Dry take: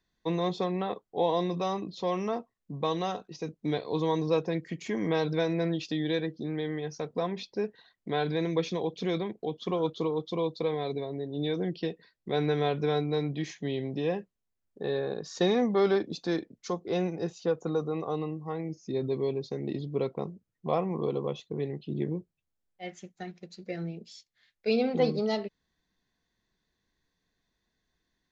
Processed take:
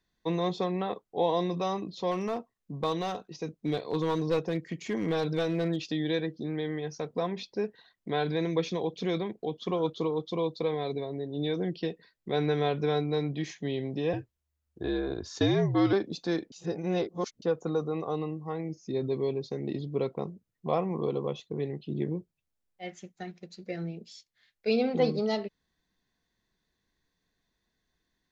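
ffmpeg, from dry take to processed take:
ffmpeg -i in.wav -filter_complex "[0:a]asettb=1/sr,asplit=3[link_01][link_02][link_03];[link_01]atrim=end=2.114[link_04];[link_02]atrim=start=2.11:end=5.86,asetpts=PTS-STARTPTS,afade=type=in:duration=0.004:curve=qsin,afade=type=out:start_time=3.746:duration=0.004:curve=qsin,aeval=exprs='clip(val(0),-1,0.0562)':channel_layout=same[link_05];[link_03]atrim=start=5.856[link_06];[link_04][link_05]acrossfade=duration=0.004:curve1=hsin:curve2=qsin[link_07];[link_07][link_06]acrossfade=duration=0.004:curve1=qsin:curve2=hsin,asettb=1/sr,asplit=3[link_08][link_09][link_10];[link_08]atrim=end=14.134[link_11];[link_09]atrim=start=14.13:end=15.93,asetpts=PTS-STARTPTS,afade=type=in:duration=0.004:curve=qsin,afade=type=out:start_time=1.796:duration=0.004:curve=qsin,afreqshift=-74[link_12];[link_10]atrim=start=15.926[link_13];[link_11][link_12]acrossfade=duration=0.004:curve1=hsin:curve2=qsin[link_14];[link_14][link_13]acrossfade=duration=0.004:curve1=qsin:curve2=hsin,asplit=3[link_15][link_16][link_17];[link_15]atrim=end=16.522[link_18];[link_16]atrim=start=16.518:end=17.422,asetpts=PTS-STARTPTS,areverse[link_19];[link_17]atrim=start=17.418[link_20];[link_18][link_19]acrossfade=duration=0.004:curve1=hsin:curve2=hsin[link_21];[link_21][link_20]acrossfade=duration=0.004:curve1=hsin:curve2=hsin" out.wav

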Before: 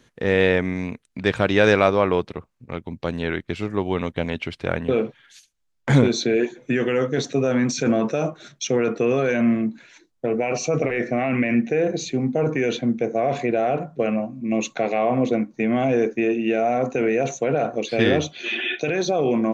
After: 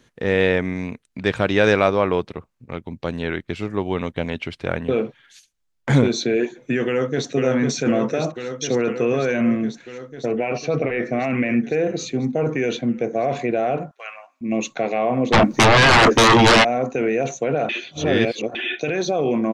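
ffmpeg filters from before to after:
ffmpeg -i in.wav -filter_complex "[0:a]asplit=2[link_01][link_02];[link_02]afade=type=in:start_time=6.86:duration=0.01,afade=type=out:start_time=7.31:duration=0.01,aecho=0:1:500|1000|1500|2000|2500|3000|3500|4000|4500|5000|5500|6000:0.595662|0.47653|0.381224|0.304979|0.243983|0.195187|0.156149|0.124919|0.0999355|0.0799484|0.0639587|0.051167[link_03];[link_01][link_03]amix=inputs=2:normalize=0,asettb=1/sr,asplit=3[link_04][link_05][link_06];[link_04]atrim=end=10.374[link_07];[link_05]atrim=start=10.37:end=11.05,asetpts=PTS-STARTPTS,afade=type=in:duration=0.004:curve=qsin,afade=type=out:start_time=0.676:duration=0.004:curve=qsin,lowpass=frequency=4700:width=0.5412,lowpass=frequency=4700:width=1.3066[link_08];[link_06]atrim=start=11.046[link_09];[link_07][link_08]acrossfade=duration=0.004:curve1=hsin:curve2=qsin[link_10];[link_10][link_09]acrossfade=duration=0.004:curve1=qsin:curve2=hsin,asettb=1/sr,asplit=3[link_11][link_12][link_13];[link_11]atrim=end=13.914[link_14];[link_12]atrim=start=13.91:end=14.41,asetpts=PTS-STARTPTS,afade=type=in:duration=0.004:curve=qsin,afade=type=out:start_time=0.496:duration=0.004:curve=qsin,highpass=frequency=1000:width=0.5412,highpass=frequency=1000:width=1.3066[link_15];[link_13]atrim=start=14.406[link_16];[link_14][link_15]acrossfade=duration=0.004:curve1=hsin:curve2=qsin[link_17];[link_17][link_16]acrossfade=duration=0.004:curve1=qsin:curve2=hsin,asplit=3[link_18][link_19][link_20];[link_18]afade=type=out:start_time=15.32:duration=0.02[link_21];[link_19]aeval=exprs='0.355*sin(PI/2*6.31*val(0)/0.355)':channel_layout=same,afade=type=in:start_time=15.32:duration=0.02,afade=type=out:start_time=16.63:duration=0.02[link_22];[link_20]afade=type=in:start_time=16.63:duration=0.02[link_23];[link_21][link_22][link_23]amix=inputs=3:normalize=0,asplit=3[link_24][link_25][link_26];[link_24]atrim=end=17.692[link_27];[link_25]atrim=start=17.688:end=18.552,asetpts=PTS-STARTPTS,areverse[link_28];[link_26]atrim=start=18.548[link_29];[link_27][link_28]acrossfade=duration=0.004:curve1=hsin:curve2=hsin[link_30];[link_30][link_29]acrossfade=duration=0.004:curve1=hsin:curve2=hsin" out.wav

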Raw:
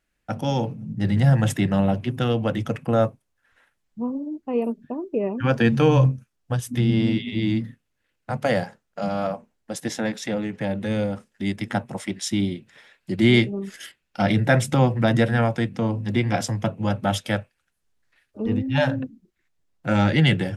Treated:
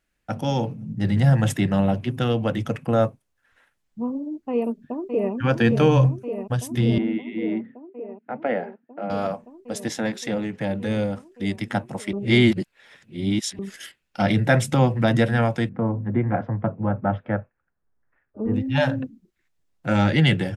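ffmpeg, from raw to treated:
ffmpeg -i in.wav -filter_complex "[0:a]asplit=2[link_01][link_02];[link_02]afade=type=in:start_time=4.52:duration=0.01,afade=type=out:start_time=5.33:duration=0.01,aecho=0:1:570|1140|1710|2280|2850|3420|3990|4560|5130|5700|6270|6840:0.473151|0.402179|0.341852|0.290574|0.246988|0.20994|0.178449|0.151681|0.128929|0.10959|0.0931514|0.0791787[link_03];[link_01][link_03]amix=inputs=2:normalize=0,asettb=1/sr,asplit=3[link_04][link_05][link_06];[link_04]atrim=end=6.984[link_07];[link_05]atrim=start=6.98:end=9.1,asetpts=PTS-STARTPTS,afade=type=in:duration=0.004:curve=qsin,afade=type=out:start_time=2.116:duration=0.004:curve=qsin,highpass=frequency=230:width=0.5412,highpass=frequency=230:width=1.3066,equalizer=frequency=570:width_type=q:width=4:gain=-3,equalizer=frequency=1100:width_type=q:width=4:gain=-8,equalizer=frequency=1700:width_type=q:width=4:gain=-4,lowpass=frequency=2200:width=0.5412,lowpass=frequency=2200:width=1.3066[link_08];[link_06]atrim=start=9.096[link_09];[link_07][link_08]acrossfade=duration=0.004:curve1=hsin:curve2=qsin[link_10];[link_10][link_09]acrossfade=duration=0.004:curve1=qsin:curve2=hsin,asettb=1/sr,asplit=3[link_11][link_12][link_13];[link_11]atrim=end=15.694[link_14];[link_12]atrim=start=15.69:end=18.54,asetpts=PTS-STARTPTS,afade=type=in:duration=0.004:curve=qsin,afade=type=out:start_time=2.846:duration=0.004:curve=qsin,lowpass=frequency=1600:width=0.5412,lowpass=frequency=1600:width=1.3066[link_15];[link_13]atrim=start=18.536[link_16];[link_14][link_15]acrossfade=duration=0.004:curve1=hsin:curve2=qsin[link_17];[link_17][link_16]acrossfade=duration=0.004:curve1=qsin:curve2=hsin,asplit=3[link_18][link_19][link_20];[link_18]atrim=end=12.132[link_21];[link_19]atrim=start=12.128:end=13.592,asetpts=PTS-STARTPTS,areverse[link_22];[link_20]atrim=start=13.588[link_23];[link_21][link_22]acrossfade=duration=0.004:curve1=hsin:curve2=hsin[link_24];[link_24][link_23]acrossfade=duration=0.004:curve1=hsin:curve2=hsin" out.wav

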